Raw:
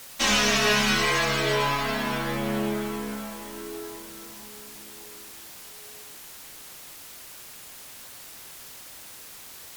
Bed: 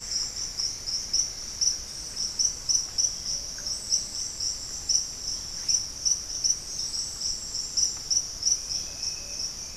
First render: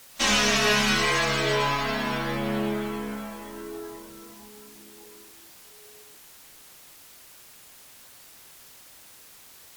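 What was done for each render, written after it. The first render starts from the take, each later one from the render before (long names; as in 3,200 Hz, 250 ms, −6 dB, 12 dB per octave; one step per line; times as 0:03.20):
noise reduction from a noise print 6 dB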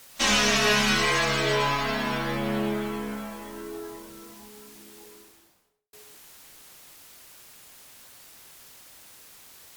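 0:05.01–0:05.93: fade out and dull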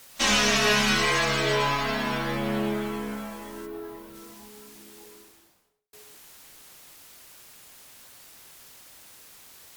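0:03.65–0:04.14: parametric band 7,100 Hz −14.5 dB → −7.5 dB 1.7 octaves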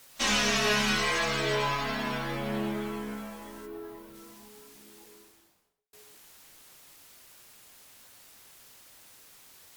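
flanger 0.43 Hz, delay 7 ms, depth 3.9 ms, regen −70%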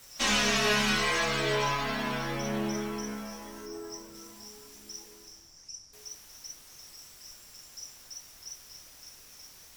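mix in bed −20 dB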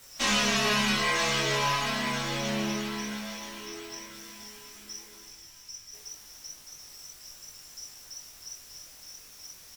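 double-tracking delay 20 ms −7.5 dB
delay with a high-pass on its return 981 ms, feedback 36%, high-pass 2,100 Hz, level −5 dB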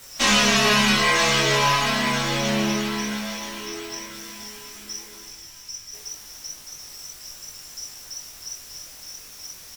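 level +7.5 dB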